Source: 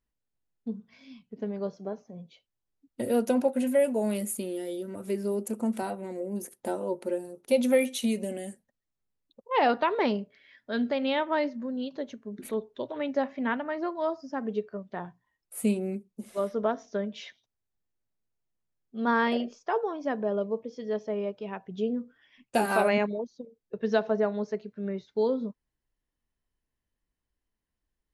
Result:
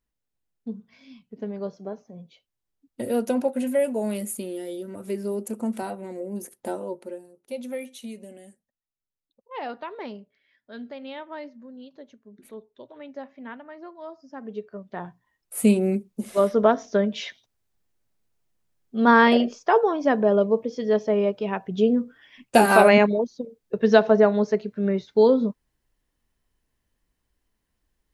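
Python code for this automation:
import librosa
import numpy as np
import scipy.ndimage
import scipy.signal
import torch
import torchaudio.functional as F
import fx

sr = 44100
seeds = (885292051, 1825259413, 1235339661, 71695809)

y = fx.gain(x, sr, db=fx.line((6.76, 1.0), (7.32, -10.0), (14.06, -10.0), (15.04, 3.0), (15.88, 9.5)))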